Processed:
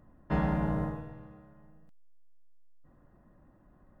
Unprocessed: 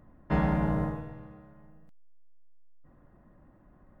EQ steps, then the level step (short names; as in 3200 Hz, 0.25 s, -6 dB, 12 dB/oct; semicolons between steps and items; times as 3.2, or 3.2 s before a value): notch 2200 Hz, Q 12; -2.5 dB